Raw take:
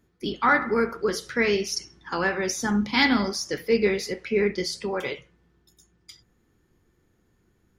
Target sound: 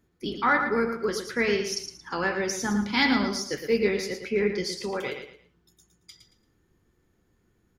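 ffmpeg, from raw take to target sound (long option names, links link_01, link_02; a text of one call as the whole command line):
ffmpeg -i in.wav -af "aecho=1:1:113|226|339:0.398|0.115|0.0335,volume=-2.5dB" out.wav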